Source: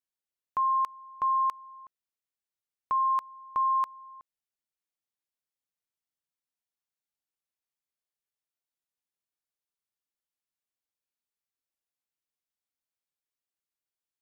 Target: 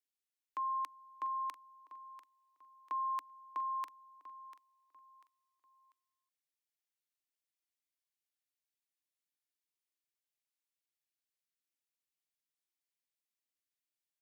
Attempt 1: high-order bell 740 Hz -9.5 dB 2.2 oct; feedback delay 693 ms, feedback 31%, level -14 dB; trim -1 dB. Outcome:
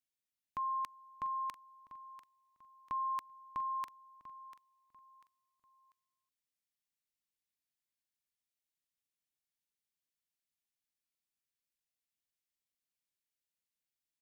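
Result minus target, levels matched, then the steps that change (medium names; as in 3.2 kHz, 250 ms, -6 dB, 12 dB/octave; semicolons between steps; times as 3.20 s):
250 Hz band +5.0 dB
add first: Chebyshev high-pass 280 Hz, order 6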